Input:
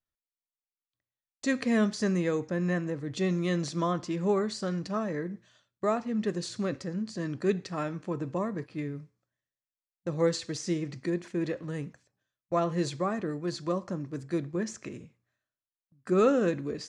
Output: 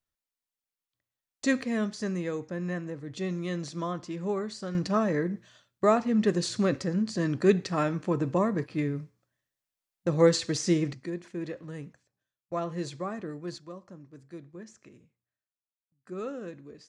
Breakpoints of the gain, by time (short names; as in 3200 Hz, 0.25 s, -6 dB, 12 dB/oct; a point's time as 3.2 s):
+2.5 dB
from 1.62 s -4 dB
from 4.75 s +5.5 dB
from 10.93 s -4.5 dB
from 13.58 s -13 dB